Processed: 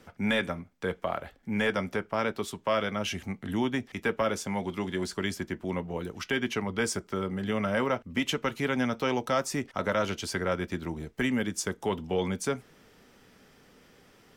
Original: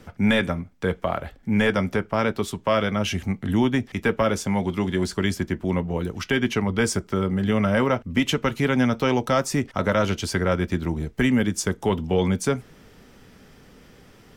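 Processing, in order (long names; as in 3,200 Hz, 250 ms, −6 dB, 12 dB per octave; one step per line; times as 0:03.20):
low-shelf EQ 180 Hz −9.5 dB
level −5 dB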